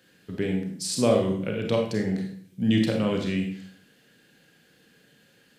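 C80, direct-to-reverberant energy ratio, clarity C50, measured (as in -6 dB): 8.5 dB, 1.0 dB, 5.0 dB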